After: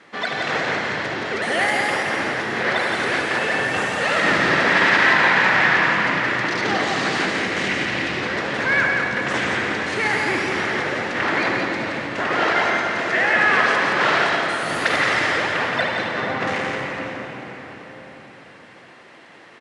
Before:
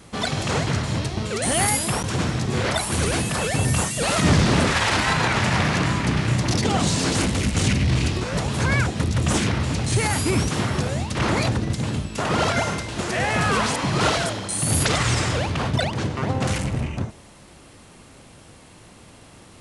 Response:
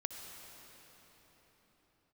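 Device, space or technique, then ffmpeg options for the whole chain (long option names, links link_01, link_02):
station announcement: -filter_complex "[0:a]highpass=330,lowpass=3700,equalizer=frequency=1800:width_type=o:width=0.56:gain=10,aecho=1:1:72.89|172:0.316|0.631[link_01];[1:a]atrim=start_sample=2205[link_02];[link_01][link_02]afir=irnorm=-1:irlink=0,volume=1.5dB"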